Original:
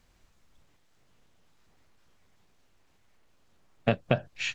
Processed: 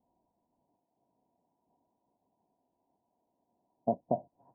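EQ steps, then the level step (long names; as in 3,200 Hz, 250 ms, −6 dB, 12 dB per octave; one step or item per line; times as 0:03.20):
high-pass filter 550 Hz 6 dB per octave
Chebyshev low-pass with heavy ripple 1,000 Hz, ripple 9 dB
+4.5 dB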